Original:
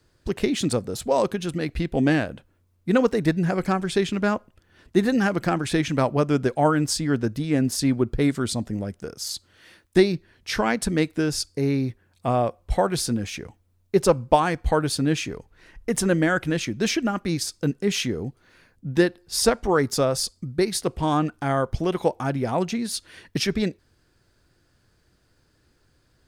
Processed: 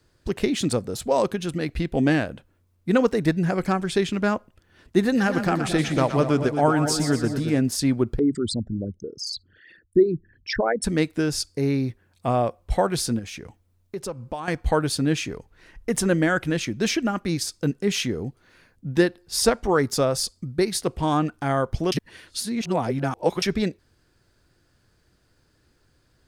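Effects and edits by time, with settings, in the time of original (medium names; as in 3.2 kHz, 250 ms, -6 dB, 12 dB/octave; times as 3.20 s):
5.02–7.60 s: two-band feedback delay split 630 Hz, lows 223 ms, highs 120 ms, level -8 dB
8.19–10.84 s: resonances exaggerated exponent 3
13.19–14.48 s: compression 2.5:1, threshold -34 dBFS
21.92–23.42 s: reverse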